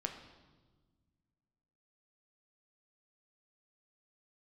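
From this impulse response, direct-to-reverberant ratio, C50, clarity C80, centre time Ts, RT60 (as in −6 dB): 3.5 dB, 7.5 dB, 9.5 dB, 24 ms, 1.4 s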